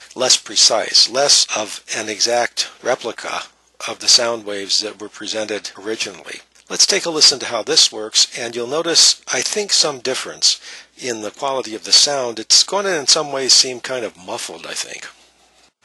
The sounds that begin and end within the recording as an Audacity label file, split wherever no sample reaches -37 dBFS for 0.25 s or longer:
3.810000	15.130000	sound